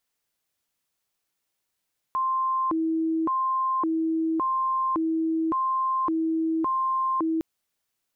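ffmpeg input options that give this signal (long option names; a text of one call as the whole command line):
ffmpeg -f lavfi -i "aevalsrc='0.0794*sin(2*PI*(686.5*t+363.5/0.89*(0.5-abs(mod(0.89*t,1)-0.5))))':duration=5.26:sample_rate=44100" out.wav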